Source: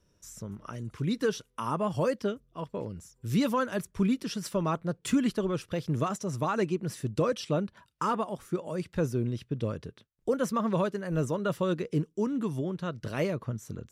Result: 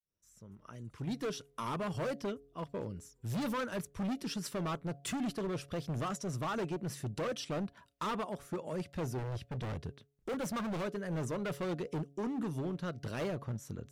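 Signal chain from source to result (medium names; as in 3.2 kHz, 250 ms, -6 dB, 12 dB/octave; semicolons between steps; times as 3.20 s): fade-in on the opening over 1.54 s; overload inside the chain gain 29.5 dB; 9.18–10.83 s: peaking EQ 74 Hz +6.5 dB 2.3 oct; wavefolder -29.5 dBFS; wow and flutter 25 cents; de-hum 140.3 Hz, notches 5; trim -3 dB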